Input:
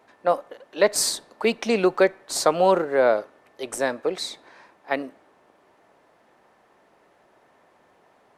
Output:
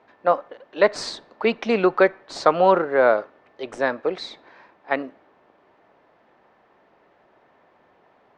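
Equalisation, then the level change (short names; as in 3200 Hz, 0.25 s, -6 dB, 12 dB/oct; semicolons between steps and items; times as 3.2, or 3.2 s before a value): dynamic EQ 1300 Hz, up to +5 dB, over -33 dBFS, Q 1.3; LPF 4400 Hz 12 dB/oct; air absorption 68 m; +1.0 dB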